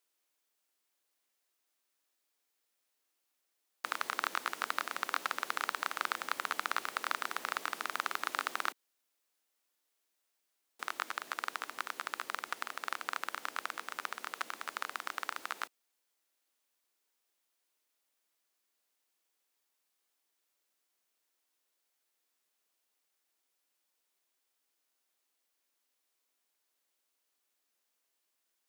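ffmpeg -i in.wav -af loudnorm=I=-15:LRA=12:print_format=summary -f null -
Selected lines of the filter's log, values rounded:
Input Integrated:    -37.8 LUFS
Input True Peak:     -14.9 dBTP
Input LRA:            10.1 LU
Input Threshold:     -47.8 LUFS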